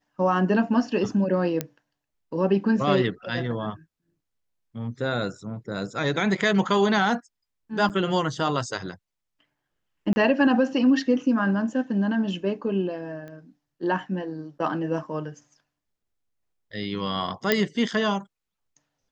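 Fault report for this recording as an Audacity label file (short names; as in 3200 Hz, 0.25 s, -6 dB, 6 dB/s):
1.610000	1.610000	pop -11 dBFS
7.890000	7.900000	gap 8.1 ms
10.130000	10.160000	gap 30 ms
13.280000	13.280000	pop -29 dBFS
17.520000	17.520000	pop -6 dBFS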